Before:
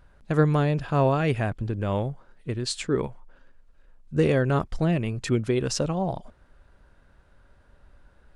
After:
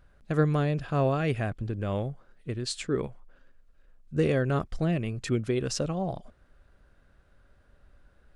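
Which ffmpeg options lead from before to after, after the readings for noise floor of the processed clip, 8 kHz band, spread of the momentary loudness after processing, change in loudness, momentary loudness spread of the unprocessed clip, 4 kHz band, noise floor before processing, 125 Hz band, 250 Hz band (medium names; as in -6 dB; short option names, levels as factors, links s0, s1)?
-62 dBFS, -3.5 dB, 9 LU, -3.5 dB, 9 LU, -3.5 dB, -59 dBFS, -3.5 dB, -3.5 dB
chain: -af "equalizer=f=920:w=7.5:g=-8.5,volume=0.668"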